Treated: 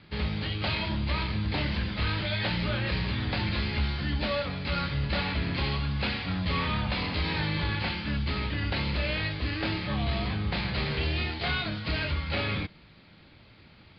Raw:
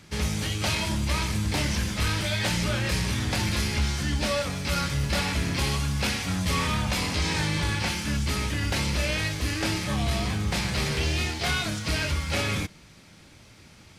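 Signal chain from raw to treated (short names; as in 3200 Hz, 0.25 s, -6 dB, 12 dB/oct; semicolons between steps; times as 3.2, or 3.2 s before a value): steep low-pass 4700 Hz 96 dB/oct; gain -2.5 dB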